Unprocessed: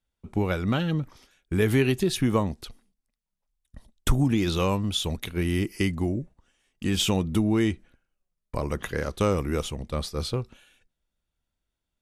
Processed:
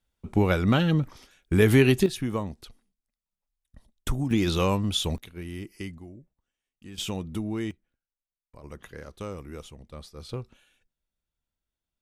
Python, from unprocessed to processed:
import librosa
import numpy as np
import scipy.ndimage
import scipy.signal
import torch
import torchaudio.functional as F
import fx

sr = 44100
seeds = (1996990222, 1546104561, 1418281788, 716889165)

y = fx.gain(x, sr, db=fx.steps((0.0, 3.5), (2.06, -6.0), (4.31, 0.5), (5.18, -11.5), (5.98, -18.0), (6.98, -8.0), (7.71, -20.0), (8.64, -13.0), (10.29, -6.0)))